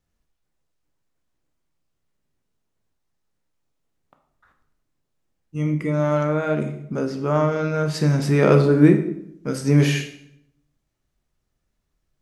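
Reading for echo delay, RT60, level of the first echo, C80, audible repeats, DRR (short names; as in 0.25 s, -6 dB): none, 0.70 s, none, 12.5 dB, none, 5.5 dB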